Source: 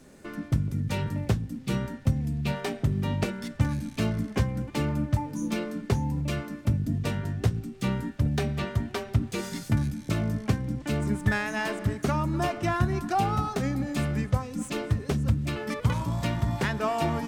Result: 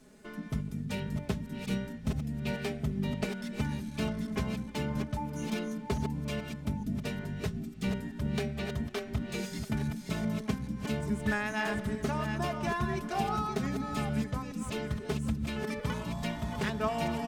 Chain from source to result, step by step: reverse delay 0.427 s, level -6 dB; bell 3300 Hz +2 dB; comb 4.7 ms, depth 63%; gain -7 dB

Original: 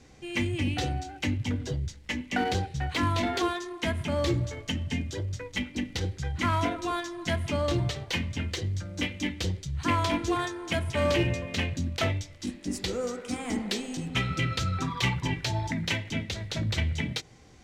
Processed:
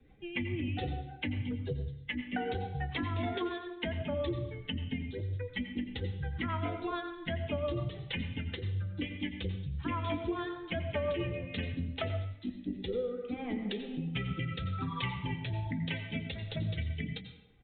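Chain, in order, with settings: per-bin expansion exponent 1.5; rotary speaker horn 7 Hz, later 0.75 Hz, at 11.42; compressor, threshold -32 dBFS, peak gain reduction 9 dB; downsampling 8000 Hz; on a send at -8 dB: reverb RT60 0.75 s, pre-delay 81 ms; on the sum: dynamic EQ 490 Hz, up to +5 dB, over -49 dBFS, Q 1.3; three-band squash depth 40%

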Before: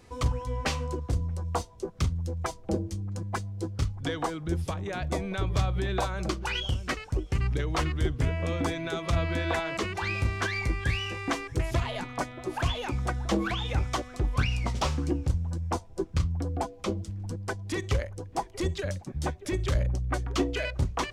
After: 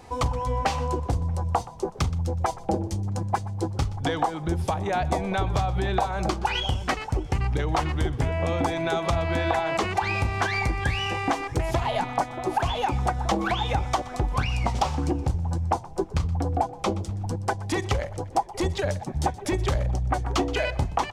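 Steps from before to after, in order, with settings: bell 810 Hz +12.5 dB 0.56 oct; compressor, threshold -26 dBFS, peak gain reduction 11.5 dB; frequency-shifting echo 0.123 s, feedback 42%, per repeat +35 Hz, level -19 dB; gain +5.5 dB

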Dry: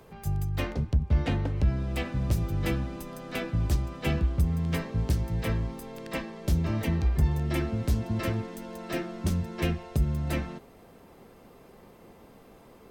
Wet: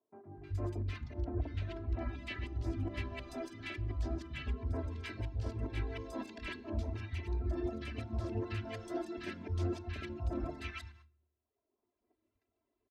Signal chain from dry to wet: reverse delay 0.103 s, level -5 dB; gate -45 dBFS, range -31 dB; LPF 4800 Hz 12 dB/oct; reverb removal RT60 1.2 s; HPF 49 Hz; bell 100 Hz +6 dB 0.24 oct; comb 3 ms, depth 95%; reverse; compressor 5:1, threshold -34 dBFS, peak gain reduction 17.5 dB; reverse; three bands offset in time mids, lows, highs 0.24/0.31 s, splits 160/1200 Hz; on a send at -17 dB: reverb RT60 0.65 s, pre-delay 3 ms; on the sum: Doppler distortion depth 0.12 ms; gain -1 dB

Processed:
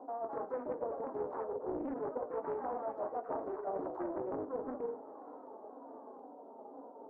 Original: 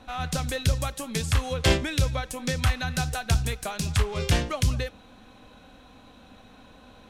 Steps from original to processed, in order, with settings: repeated pitch sweeps -4 st, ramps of 0.518 s; elliptic band-pass 300–910 Hz, stop band 50 dB; treble ducked by the level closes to 470 Hz, closed at -31 dBFS; reverb RT60 0.45 s, pre-delay 4 ms, DRR 7.5 dB; reverse; compressor 10:1, threshold -41 dBFS, peak gain reduction 15 dB; reverse; echoes that change speed 0.224 s, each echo +3 st, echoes 2, each echo -6 dB; Doppler distortion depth 0.46 ms; gain +5.5 dB

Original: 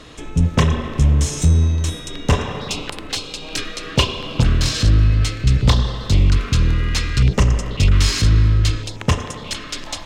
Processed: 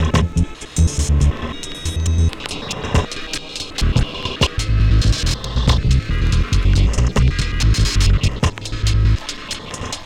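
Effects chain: slices in reverse order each 0.109 s, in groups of 7; mismatched tape noise reduction encoder only

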